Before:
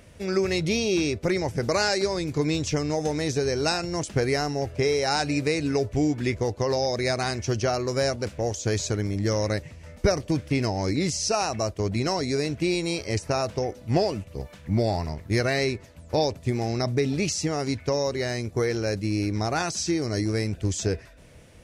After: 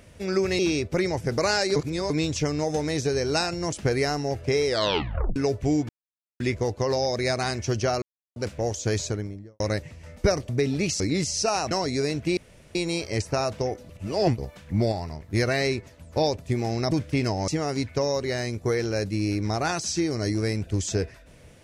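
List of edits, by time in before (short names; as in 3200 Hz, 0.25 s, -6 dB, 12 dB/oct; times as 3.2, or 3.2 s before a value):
0.59–0.9 cut
2.07–2.41 reverse
4.97 tape stop 0.70 s
6.2 insert silence 0.51 s
7.82–8.16 mute
8.74–9.4 studio fade out
10.29–10.86 swap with 16.88–17.39
11.57–12.06 cut
12.72 insert room tone 0.38 s
13.86–14.35 reverse
14.89–15.27 gain -4.5 dB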